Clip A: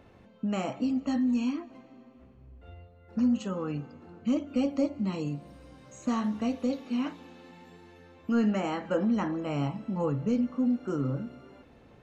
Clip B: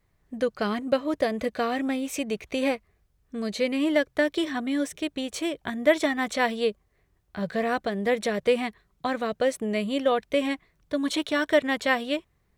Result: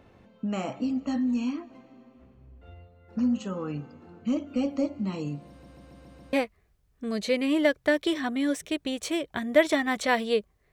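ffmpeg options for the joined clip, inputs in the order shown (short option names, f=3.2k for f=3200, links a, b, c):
-filter_complex "[0:a]apad=whole_dur=10.72,atrim=end=10.72,asplit=6[a][b][c][d][e][f];[a]atrim=end=5.632[g];[b]atrim=start=5.488:end=5.632[h];[c]atrim=start=5.488:end=5.632[i];[d]atrim=start=5.488:end=5.632[j];[e]atrim=start=5.488:end=5.632[k];[f]atrim=start=5.488:end=5.632[l];[1:a]atrim=start=2.638:end=7.03[m];[g][h]acrossfade=d=0.004:c1=hsin:c2=hsin[n];[n][i]acrossfade=d=0.004:c1=hsin:c2=hsin[o];[o][j]acrossfade=d=0.004:c1=hsin:c2=hsin[p];[p][k]acrossfade=d=0.004:c1=hsin:c2=hsin[q];[q][l]acrossfade=d=0.004:c1=hsin:c2=hsin[r];[r][m]acrossfade=d=0.004:c1=hsin:c2=hsin"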